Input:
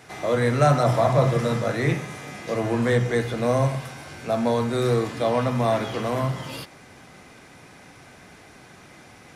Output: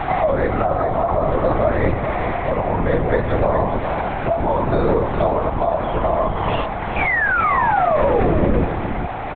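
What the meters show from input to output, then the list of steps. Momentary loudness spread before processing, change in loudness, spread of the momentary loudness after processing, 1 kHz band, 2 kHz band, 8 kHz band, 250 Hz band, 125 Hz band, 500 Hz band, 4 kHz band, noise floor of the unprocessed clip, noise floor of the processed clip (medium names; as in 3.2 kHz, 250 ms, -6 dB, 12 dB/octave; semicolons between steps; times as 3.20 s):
14 LU, +4.0 dB, 6 LU, +9.5 dB, +9.5 dB, under -35 dB, +3.5 dB, +1.0 dB, +5.5 dB, -2.0 dB, -49 dBFS, -25 dBFS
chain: peaking EQ 800 Hz +13 dB 1.1 oct; in parallel at 0 dB: upward compressor, threshold -22 dBFS; on the sum: peak limiter -2.5 dBFS, peak gain reduction 9.5 dB; compression, threshold -21 dBFS, peak gain reduction 13.5 dB; tremolo 0.61 Hz, depth 32%; painted sound fall, 6.96–8.65 s, 230–2500 Hz -23 dBFS; distance through air 280 m; LPC vocoder at 8 kHz whisper; on a send: delay 416 ms -8 dB; on the sum: trim +7 dB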